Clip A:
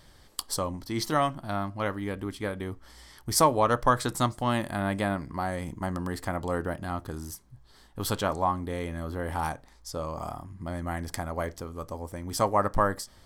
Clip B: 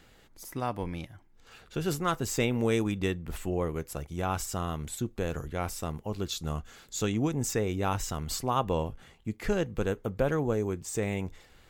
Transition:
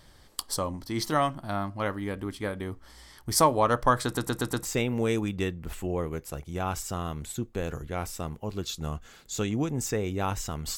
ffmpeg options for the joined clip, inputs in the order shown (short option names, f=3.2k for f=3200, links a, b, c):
-filter_complex "[0:a]apad=whole_dur=10.77,atrim=end=10.77,asplit=5[a][b][c][d][e];[a]atrim=end=4.172[f];[b]atrim=start=4.048:end=4.172[g];[c]atrim=start=4.048:end=4.172[h];[d]atrim=start=4.048:end=4.172[i];[e]atrim=start=4.048:end=4.172[j];[1:a]atrim=start=2.278:end=8.4[k];[f][g]acrossfade=d=0.004:c1=hsin:c2=hsin[l];[l][h]acrossfade=d=0.004:c1=hsin:c2=hsin[m];[m][i]acrossfade=d=0.004:c1=hsin:c2=hsin[n];[n][j]acrossfade=d=0.004:c1=hsin:c2=hsin[o];[o][k]acrossfade=d=0.004:c1=hsin:c2=hsin"